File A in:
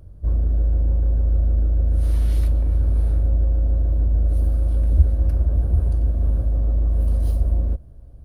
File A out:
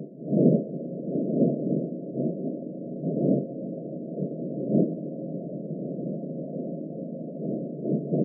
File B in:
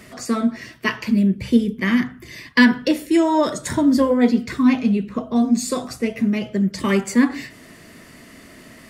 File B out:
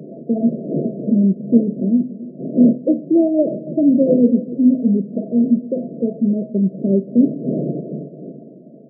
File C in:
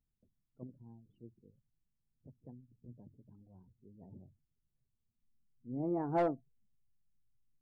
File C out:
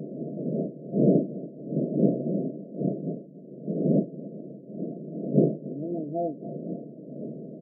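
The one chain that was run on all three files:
wind on the microphone 320 Hz −29 dBFS
repeating echo 281 ms, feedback 37%, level −17 dB
brick-wall band-pass 130–690 Hz
level +2.5 dB

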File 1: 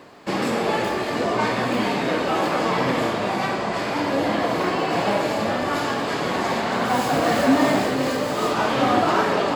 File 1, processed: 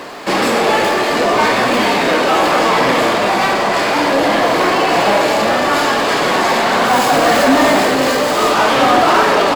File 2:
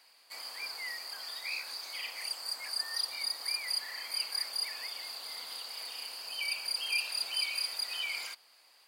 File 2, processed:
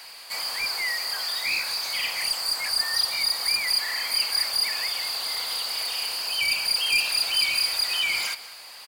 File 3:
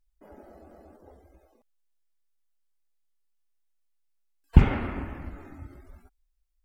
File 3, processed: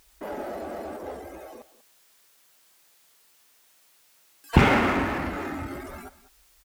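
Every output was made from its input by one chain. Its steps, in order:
high-pass filter 410 Hz 6 dB per octave
power curve on the samples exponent 0.7
on a send: single-tap delay 193 ms −17.5 dB
on the sum: level +7 dB

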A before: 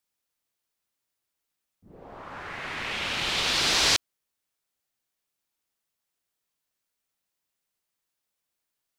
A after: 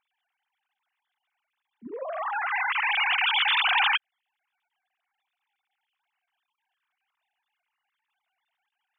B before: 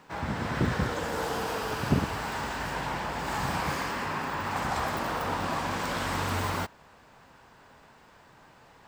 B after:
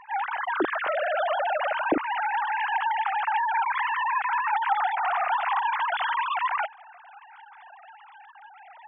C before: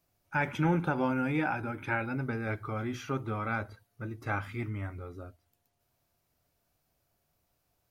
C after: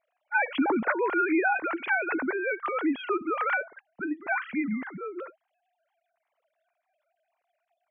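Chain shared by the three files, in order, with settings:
three sine waves on the formant tracks
downward compressor 2 to 1, threshold −30 dBFS
level +6.5 dB

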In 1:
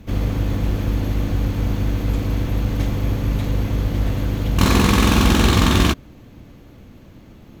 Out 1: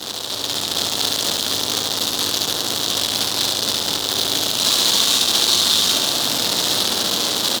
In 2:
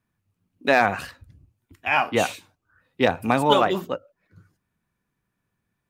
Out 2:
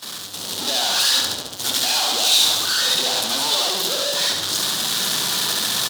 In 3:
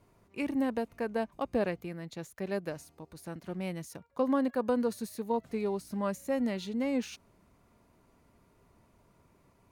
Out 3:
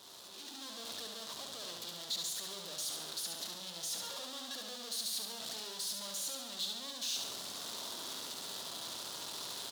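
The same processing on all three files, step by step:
sign of each sample alone
meter weighting curve A
on a send: repeating echo 70 ms, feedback 53%, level −4.5 dB
on the sum: noise gate −31 dBFS, range −13 dB
automatic gain control gain up to 10 dB
high shelf with overshoot 2,900 Hz +8 dB, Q 3
level −9 dB

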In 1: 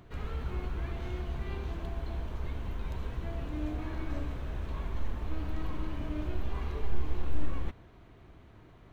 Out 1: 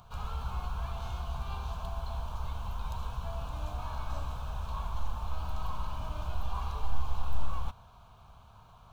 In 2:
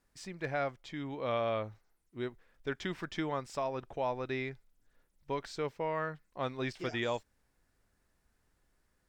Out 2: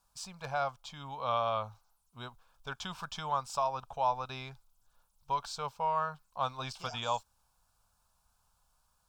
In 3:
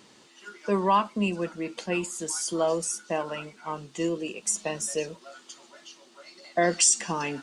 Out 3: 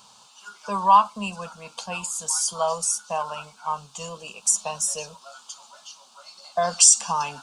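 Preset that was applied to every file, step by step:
low shelf with overshoot 720 Hz −7.5 dB, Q 1.5
phaser with its sweep stopped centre 800 Hz, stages 4
level +7.5 dB

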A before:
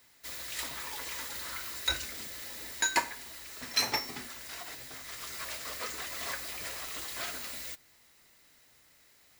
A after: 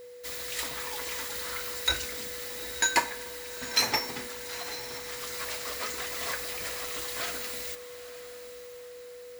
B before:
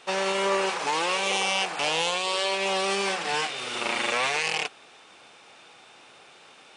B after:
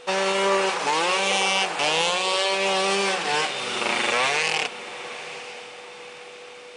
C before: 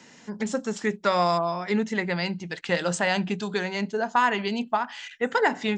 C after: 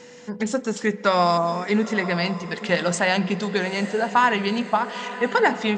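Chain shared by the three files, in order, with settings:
steady tone 490 Hz −47 dBFS
feedback delay with all-pass diffusion 923 ms, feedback 44%, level −14 dB
spring reverb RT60 3 s, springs 35/56/60 ms, chirp 50 ms, DRR 18.5 dB
level +3.5 dB

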